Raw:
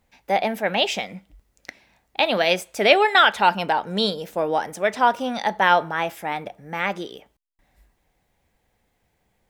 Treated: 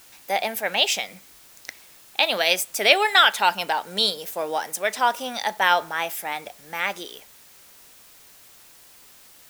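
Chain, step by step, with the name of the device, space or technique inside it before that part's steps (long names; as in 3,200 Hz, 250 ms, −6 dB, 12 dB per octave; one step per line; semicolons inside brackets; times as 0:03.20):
turntable without a phono preamp (RIAA equalisation recording; white noise bed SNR 25 dB)
level −2.5 dB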